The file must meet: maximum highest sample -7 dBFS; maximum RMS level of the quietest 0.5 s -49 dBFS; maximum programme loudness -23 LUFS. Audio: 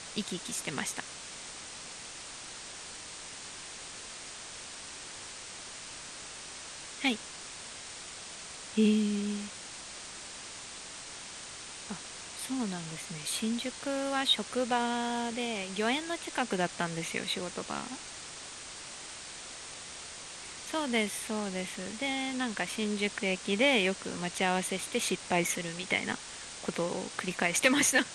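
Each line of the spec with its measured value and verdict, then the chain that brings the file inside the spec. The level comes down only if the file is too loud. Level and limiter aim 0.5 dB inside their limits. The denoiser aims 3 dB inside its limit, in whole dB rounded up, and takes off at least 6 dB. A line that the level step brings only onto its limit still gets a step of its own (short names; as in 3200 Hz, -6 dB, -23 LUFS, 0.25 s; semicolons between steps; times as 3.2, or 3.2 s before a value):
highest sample -11.0 dBFS: OK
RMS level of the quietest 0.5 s -45 dBFS: fail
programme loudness -33.5 LUFS: OK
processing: denoiser 7 dB, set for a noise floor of -45 dBFS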